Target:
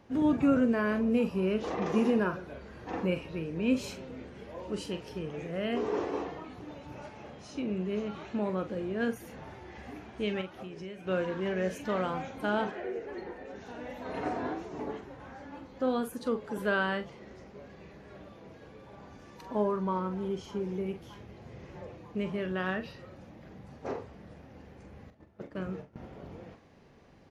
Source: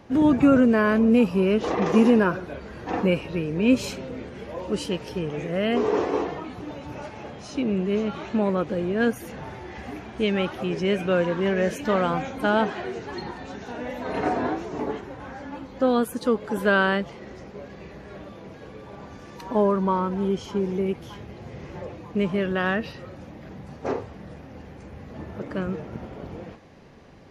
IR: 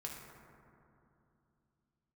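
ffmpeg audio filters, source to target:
-filter_complex "[0:a]asettb=1/sr,asplit=3[link_01][link_02][link_03];[link_01]atrim=end=10.414[link_04];[link_02]atrim=start=10.41:end=11.07,asetpts=PTS-STARTPTS,afade=type=in:duration=0.004:curve=qsin,afade=type=out:start_time=0.656:duration=0.004:curve=qsin,acompressor=threshold=-30dB:ratio=16[link_05];[link_03]atrim=start=11.066[link_06];[link_04][link_05]acrossfade=duration=0.004:curve1=hsin:curve2=qsin[link_07];[link_07][link_06]acrossfade=duration=0.004:curve1=qsin:curve2=hsin,asettb=1/sr,asplit=3[link_08][link_09][link_10];[link_08]atrim=end=12.714[link_11];[link_09]atrim=start=12.71:end=13.56,asetpts=PTS-STARTPTS,afade=type=in:duration=0.004:curve=qsin,afade=type=out:start_time=0.846:duration=0.004:curve=qsin,equalizer=frequency=125:width_type=o:width=1:gain=-12,equalizer=frequency=500:width_type=o:width=1:gain=10,equalizer=frequency=1000:width_type=o:width=1:gain=-7,equalizer=frequency=2000:width_type=o:width=1:gain=4,equalizer=frequency=4000:width_type=o:width=1:gain=-9,equalizer=frequency=8000:width_type=o:width=1:gain=-8[link_12];[link_10]atrim=start=13.556[link_13];[link_11][link_12]acrossfade=duration=0.004:curve1=hsin:curve2=qsin[link_14];[link_14][link_13]acrossfade=duration=0.004:curve1=qsin:curve2=hsin,asettb=1/sr,asplit=3[link_15][link_16][link_17];[link_15]atrim=end=25.104[link_18];[link_16]atrim=start=25.1:end=25.98,asetpts=PTS-STARTPTS,afade=type=in:duration=0.004:curve=qsin,afade=type=out:start_time=0.876:duration=0.004:curve=qsin,agate=range=-18dB:threshold=-33dB:ratio=16:detection=peak[link_19];[link_17]atrim=start=25.976[link_20];[link_18][link_19]acrossfade=duration=0.004:curve1=hsin:curve2=qsin[link_21];[link_21][link_20]acrossfade=duration=0.004:curve1=qsin:curve2=hsin,asplit=2[link_22][link_23];[link_23]adelay=43,volume=-10dB[link_24];[link_22][link_24]amix=inputs=2:normalize=0,volume=-9dB"

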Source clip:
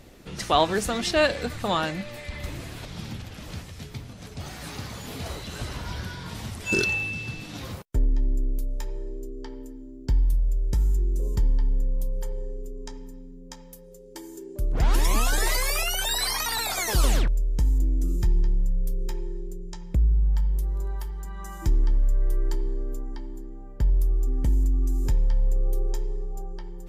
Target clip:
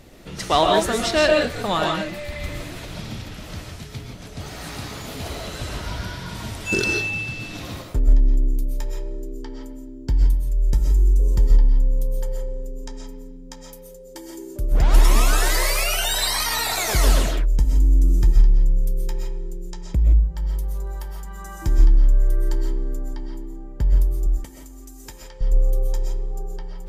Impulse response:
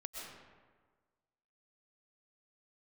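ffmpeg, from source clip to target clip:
-filter_complex "[0:a]asettb=1/sr,asplit=3[link_01][link_02][link_03];[link_01]atrim=end=24.264[link_04];[link_02]atrim=start=24.26:end=25.41,asetpts=PTS-STARTPTS,afade=type=in:duration=0.004:curve=qsin,afade=type=out:start_time=1.146:duration=0.004:curve=qsin,highpass=frequency=1200:poles=1[link_05];[link_03]atrim=start=25.406[link_06];[link_04][link_05]acrossfade=duration=0.004:curve1=hsin:curve2=qsin[link_07];[link_07][link_06]acrossfade=duration=0.004:curve1=qsin:curve2=hsin[link_08];[1:a]atrim=start_sample=2205,afade=type=out:start_time=0.23:duration=0.01,atrim=end_sample=10584[link_09];[link_08][link_09]afir=irnorm=-1:irlink=0,volume=7.5dB"

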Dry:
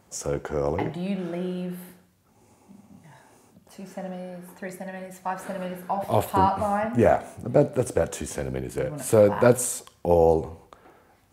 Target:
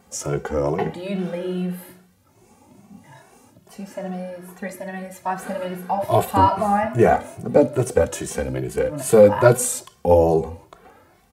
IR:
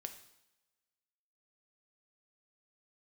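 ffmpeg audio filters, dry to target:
-filter_complex "[0:a]asplit=2[link_01][link_02];[link_02]adelay=2.2,afreqshift=2.4[link_03];[link_01][link_03]amix=inputs=2:normalize=1,volume=7.5dB"

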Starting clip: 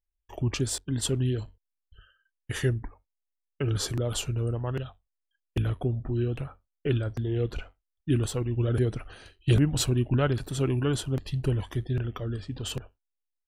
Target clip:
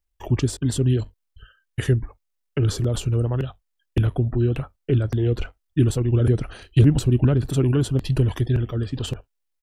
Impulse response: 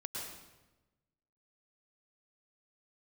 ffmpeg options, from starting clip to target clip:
-filter_complex "[0:a]acrossover=split=410[link_01][link_02];[link_02]acompressor=threshold=-39dB:ratio=5[link_03];[link_01][link_03]amix=inputs=2:normalize=0,atempo=1.4,volume=8dB"

